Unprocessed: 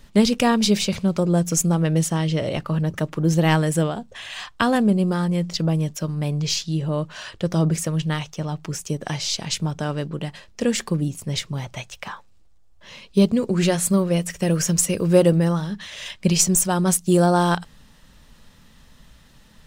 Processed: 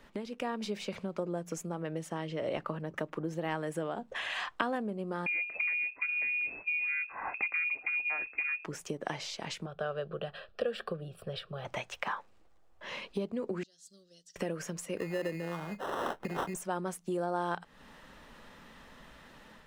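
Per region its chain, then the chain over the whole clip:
5.26–8.65 s: peaking EQ 120 Hz +14.5 dB 0.49 oct + frequency inversion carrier 2.6 kHz
9.66–11.65 s: de-esser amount 30% + treble shelf 7 kHz -9 dB + static phaser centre 1.4 kHz, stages 8
13.63–14.36 s: inverse Chebyshev high-pass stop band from 2.5 kHz + distance through air 200 m
14.97–16.54 s: compression, threshold -18 dBFS + sample-rate reducer 2.3 kHz
whole clip: compression 6:1, threshold -34 dBFS; three-band isolator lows -15 dB, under 260 Hz, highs -13 dB, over 2.6 kHz; level rider gain up to 5 dB

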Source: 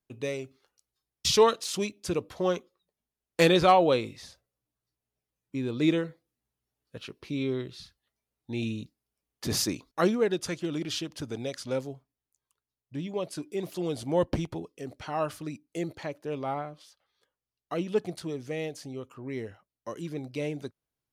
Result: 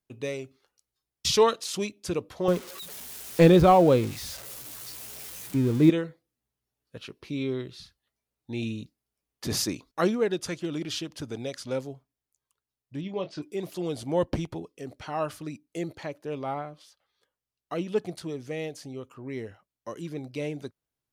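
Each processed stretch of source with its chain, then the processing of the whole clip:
2.48–5.90 s: zero-crossing glitches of -21 dBFS + tilt EQ -3.5 dB/octave
13.01–13.42 s: low-pass 5.2 kHz 24 dB/octave + doubling 26 ms -9 dB
whole clip: none

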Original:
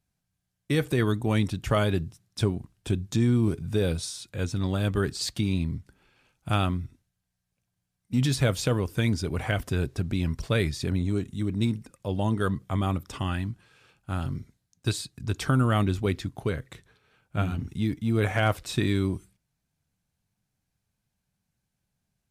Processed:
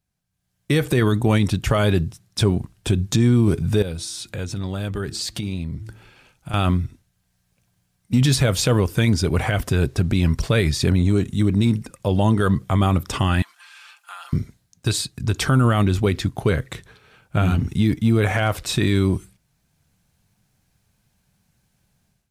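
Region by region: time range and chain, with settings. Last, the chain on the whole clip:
3.82–6.54 s: de-hum 110 Hz, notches 3 + compression 3:1, threshold -42 dBFS + band-stop 1.1 kHz, Q 23
13.42–14.33 s: high-pass 970 Hz 24 dB/octave + comb 5.8 ms, depth 81% + compression 2.5:1, threshold -54 dBFS
whole clip: peaking EQ 280 Hz -2.5 dB 0.26 oct; level rider gain up to 14 dB; peak limiter -9 dBFS

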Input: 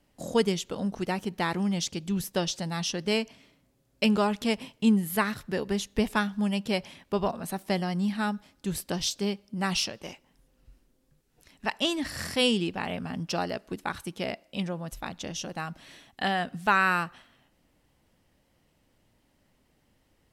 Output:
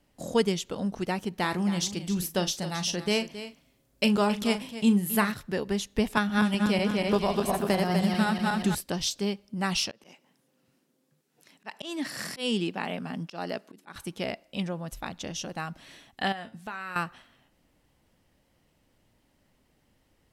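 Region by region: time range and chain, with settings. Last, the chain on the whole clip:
1.39–5.32 s: treble shelf 8.7 kHz +6 dB + doubling 39 ms -12 dB + delay 270 ms -13 dB
6.17–8.75 s: backward echo that repeats 123 ms, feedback 68%, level -2.5 dB + three bands compressed up and down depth 100%
9.91–13.96 s: high-pass 150 Hz 24 dB/octave + slow attack 195 ms
16.32–16.96 s: feedback comb 110 Hz, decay 0.24 s, mix 70% + compression 4:1, threshold -34 dBFS
whole clip: none

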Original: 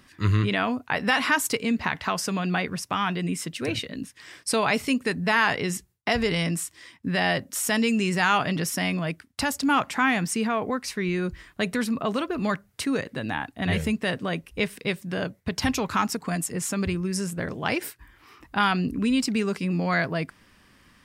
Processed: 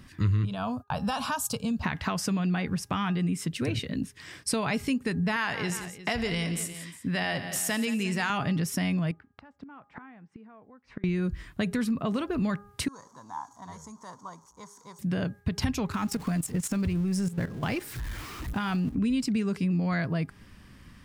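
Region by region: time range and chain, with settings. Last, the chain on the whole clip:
0.45–1.83 s: expander -35 dBFS + static phaser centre 830 Hz, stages 4
5.36–8.30 s: bass shelf 340 Hz -9.5 dB + multi-tap echo 81/174/355 ms -16.5/-13.5/-18.5 dB
9.11–11.04 s: low-pass 1.4 kHz + bass shelf 260 Hz -10 dB + inverted gate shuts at -29 dBFS, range -25 dB
12.88–14.99 s: jump at every zero crossing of -38.5 dBFS + two resonant band-passes 2.5 kHz, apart 2.7 oct + comb 0.9 ms, depth 33%
15.92–18.95 s: jump at every zero crossing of -33.5 dBFS + level held to a coarse grid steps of 14 dB
whole clip: tone controls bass +11 dB, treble 0 dB; de-hum 408.6 Hz, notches 4; compression 3:1, threshold -27 dBFS

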